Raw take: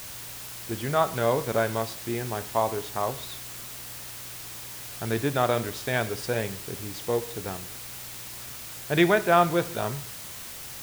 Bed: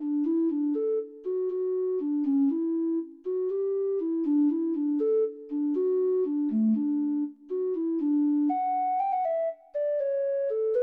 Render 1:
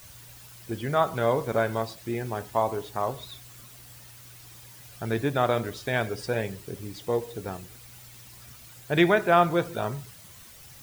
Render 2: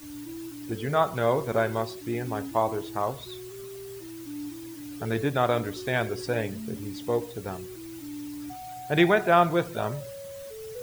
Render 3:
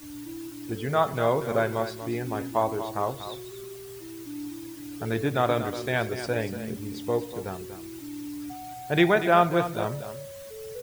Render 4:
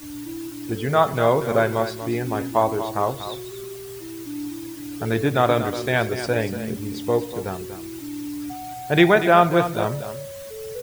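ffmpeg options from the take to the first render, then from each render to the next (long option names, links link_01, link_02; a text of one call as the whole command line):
ffmpeg -i in.wav -af "afftdn=noise_reduction=11:noise_floor=-40" out.wav
ffmpeg -i in.wav -i bed.wav -filter_complex "[1:a]volume=-13.5dB[link_01];[0:a][link_01]amix=inputs=2:normalize=0" out.wav
ffmpeg -i in.wav -af "aecho=1:1:239:0.282" out.wav
ffmpeg -i in.wav -af "volume=5.5dB,alimiter=limit=-3dB:level=0:latency=1" out.wav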